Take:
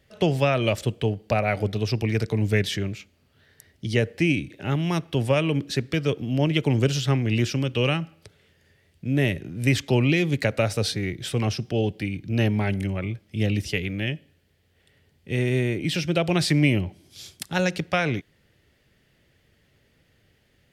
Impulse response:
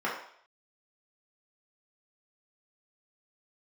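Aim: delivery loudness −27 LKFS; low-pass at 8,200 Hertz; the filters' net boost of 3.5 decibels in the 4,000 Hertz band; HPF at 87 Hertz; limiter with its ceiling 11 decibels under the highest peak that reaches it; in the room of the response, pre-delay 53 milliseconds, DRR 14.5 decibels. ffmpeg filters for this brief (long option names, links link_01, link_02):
-filter_complex "[0:a]highpass=87,lowpass=8200,equalizer=frequency=4000:width_type=o:gain=5,alimiter=limit=-17.5dB:level=0:latency=1,asplit=2[link_01][link_02];[1:a]atrim=start_sample=2205,adelay=53[link_03];[link_02][link_03]afir=irnorm=-1:irlink=0,volume=-24.5dB[link_04];[link_01][link_04]amix=inputs=2:normalize=0,volume=0.5dB"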